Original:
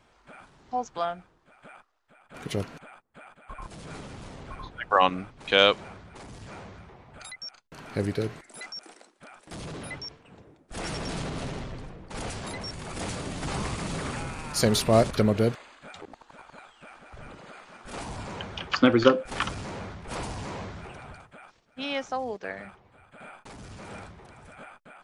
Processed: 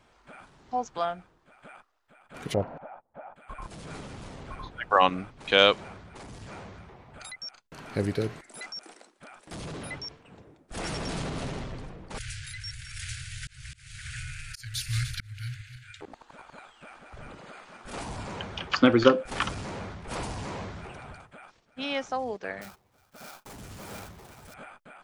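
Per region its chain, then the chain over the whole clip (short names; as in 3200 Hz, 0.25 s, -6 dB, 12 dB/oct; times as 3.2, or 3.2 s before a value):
2.54–3.36 LPF 1400 Hz + band shelf 700 Hz +9.5 dB 1 oct
12.18–16.01 regenerating reverse delay 0.149 s, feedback 49%, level -13 dB + Chebyshev band-stop 130–1500 Hz, order 5 + auto swell 0.434 s
22.61–24.54 switching dead time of 0.13 ms + gate -53 dBFS, range -9 dB + high shelf 6300 Hz +9.5 dB
whole clip: dry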